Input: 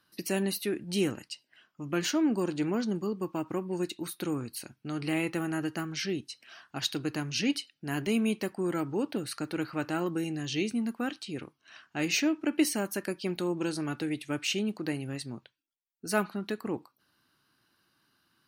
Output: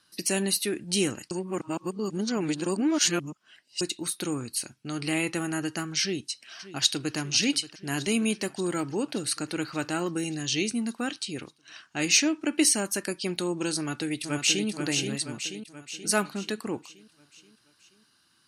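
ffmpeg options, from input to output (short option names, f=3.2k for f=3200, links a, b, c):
-filter_complex "[0:a]asplit=2[a][b];[b]afade=t=in:st=6.01:d=0.01,afade=t=out:st=7.17:d=0.01,aecho=0:1:580|1160|1740|2320|2900|3480|4060|4640:0.16788|0.117516|0.0822614|0.057583|0.0403081|0.0282157|0.019751|0.0138257[c];[a][c]amix=inputs=2:normalize=0,asplit=2[d][e];[e]afade=t=in:st=13.75:d=0.01,afade=t=out:st=14.67:d=0.01,aecho=0:1:480|960|1440|1920|2400|2880|3360:0.562341|0.309288|0.170108|0.0935595|0.0514577|0.0283018|0.015566[f];[d][f]amix=inputs=2:normalize=0,asplit=3[g][h][i];[g]atrim=end=1.312[j];[h]atrim=start=1.308:end=3.812,asetpts=PTS-STARTPTS,areverse[k];[i]atrim=start=3.808[l];[j][k]acrossfade=d=0.004:c1=hsin:c2=hsin[m];[m][l]acrossfade=d=0.004:c1=hsin:c2=hsin,lowpass=f=9.2k:w=0.5412,lowpass=f=9.2k:w=1.3066,aemphasis=mode=production:type=75fm,volume=2dB"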